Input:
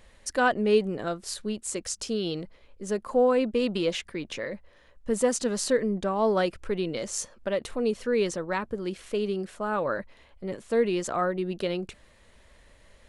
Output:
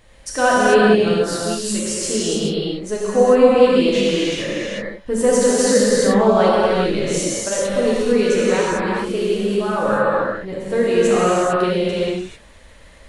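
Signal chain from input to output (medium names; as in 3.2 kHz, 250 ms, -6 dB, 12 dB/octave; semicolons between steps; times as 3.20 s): gated-style reverb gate 470 ms flat, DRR -8 dB; trim +2.5 dB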